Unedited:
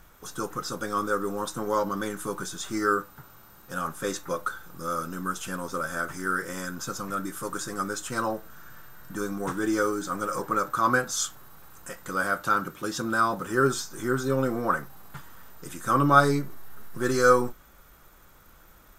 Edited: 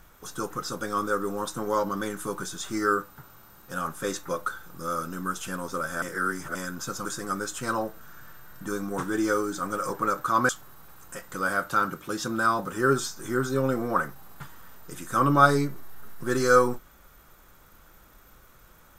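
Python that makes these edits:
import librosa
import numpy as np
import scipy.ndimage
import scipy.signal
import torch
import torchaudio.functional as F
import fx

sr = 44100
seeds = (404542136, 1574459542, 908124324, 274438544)

y = fx.edit(x, sr, fx.reverse_span(start_s=6.02, length_s=0.53),
    fx.cut(start_s=7.05, length_s=0.49),
    fx.cut(start_s=10.98, length_s=0.25), tone=tone)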